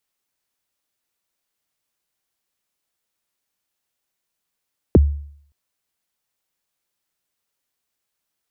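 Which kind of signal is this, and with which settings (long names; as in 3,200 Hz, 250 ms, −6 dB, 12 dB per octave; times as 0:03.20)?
synth kick length 0.57 s, from 520 Hz, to 72 Hz, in 25 ms, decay 0.61 s, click off, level −5 dB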